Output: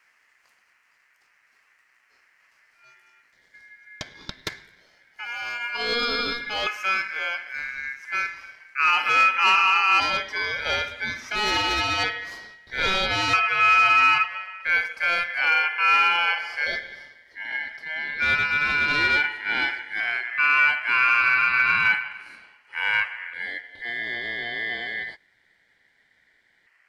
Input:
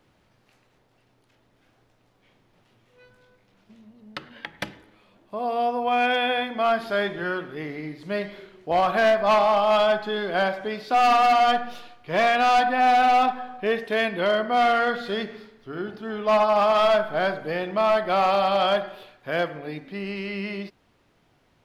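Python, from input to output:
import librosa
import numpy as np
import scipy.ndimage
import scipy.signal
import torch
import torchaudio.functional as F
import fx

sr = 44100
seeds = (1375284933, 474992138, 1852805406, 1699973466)

y = fx.speed_glide(x, sr, from_pct=108, to_pct=53)
y = fx.filter_lfo_notch(y, sr, shape='square', hz=0.15, low_hz=720.0, high_hz=1700.0, q=0.88)
y = y * np.sin(2.0 * np.pi * 1900.0 * np.arange(len(y)) / sr)
y = y * 10.0 ** (4.5 / 20.0)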